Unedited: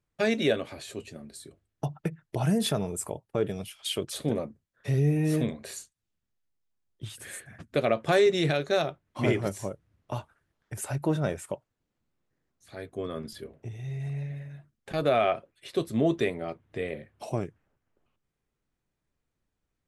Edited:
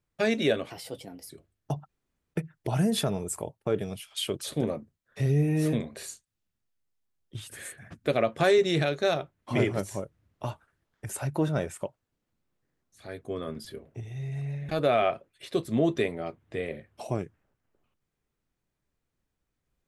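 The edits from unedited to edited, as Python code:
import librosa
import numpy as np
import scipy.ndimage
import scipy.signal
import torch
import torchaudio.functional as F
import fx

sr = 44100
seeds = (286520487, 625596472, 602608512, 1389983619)

y = fx.edit(x, sr, fx.speed_span(start_s=0.7, length_s=0.73, speed=1.22),
    fx.insert_room_tone(at_s=2.02, length_s=0.45),
    fx.cut(start_s=14.37, length_s=0.54), tone=tone)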